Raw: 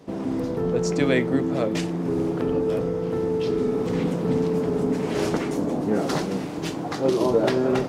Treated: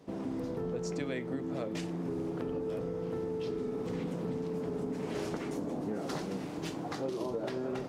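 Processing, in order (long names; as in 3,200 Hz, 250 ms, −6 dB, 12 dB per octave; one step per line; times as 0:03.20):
downward compressor, threshold −24 dBFS, peak gain reduction 9 dB
level −8 dB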